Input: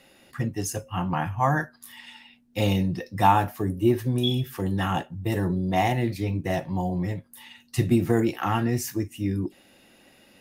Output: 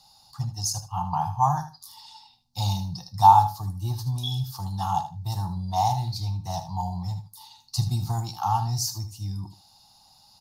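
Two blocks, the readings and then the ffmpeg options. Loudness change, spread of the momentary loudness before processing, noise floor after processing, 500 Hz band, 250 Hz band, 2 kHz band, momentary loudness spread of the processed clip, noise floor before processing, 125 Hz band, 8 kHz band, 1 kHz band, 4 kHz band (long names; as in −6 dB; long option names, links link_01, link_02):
0.0 dB, 12 LU, −58 dBFS, −13.0 dB, −12.0 dB, below −15 dB, 13 LU, −58 dBFS, −0.5 dB, +4.5 dB, +4.5 dB, +0.5 dB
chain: -af "firequalizer=gain_entry='entry(130,0);entry(250,-20);entry(470,-29);entry(820,8);entry(1800,-25);entry(2600,-17);entry(4400,13);entry(8100,-1)':delay=0.05:min_phase=1,aecho=1:1:77|154:0.266|0.0426"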